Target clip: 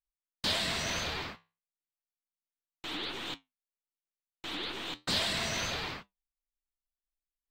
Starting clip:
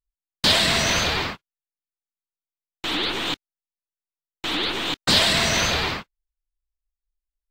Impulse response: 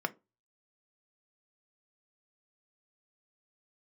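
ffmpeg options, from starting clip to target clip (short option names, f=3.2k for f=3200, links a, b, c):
-af "flanger=delay=6.4:depth=8.9:regen=-70:speed=0.34:shape=triangular,volume=-8.5dB"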